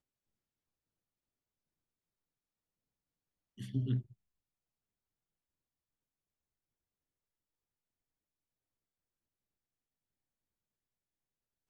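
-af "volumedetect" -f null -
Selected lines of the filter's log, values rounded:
mean_volume: -48.6 dB
max_volume: -22.7 dB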